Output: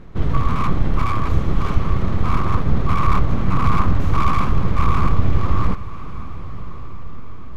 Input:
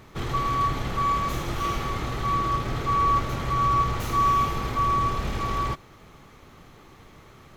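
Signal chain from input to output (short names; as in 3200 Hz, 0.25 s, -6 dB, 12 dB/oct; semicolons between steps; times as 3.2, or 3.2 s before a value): RIAA curve playback; full-wave rectifier; diffused feedback echo 1.117 s, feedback 41%, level -15 dB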